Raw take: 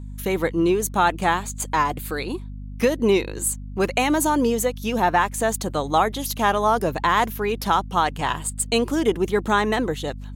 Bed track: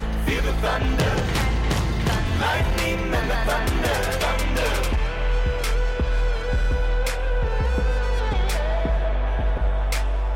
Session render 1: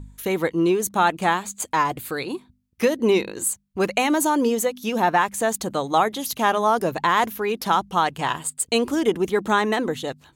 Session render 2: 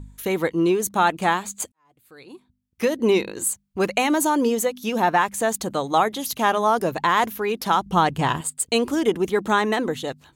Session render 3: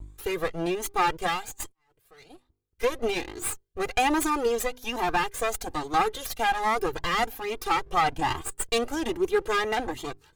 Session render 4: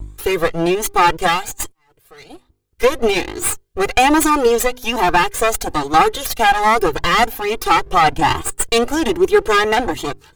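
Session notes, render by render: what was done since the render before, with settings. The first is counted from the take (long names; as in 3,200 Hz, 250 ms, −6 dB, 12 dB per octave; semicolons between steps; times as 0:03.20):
hum removal 50 Hz, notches 5
0:01.72–0:02.99: fade in quadratic; 0:07.86–0:08.41: low-shelf EQ 370 Hz +10.5 dB
lower of the sound and its delayed copy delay 2.5 ms; flanger whose copies keep moving one way rising 1.2 Hz
level +11.5 dB; brickwall limiter −1 dBFS, peak gain reduction 3 dB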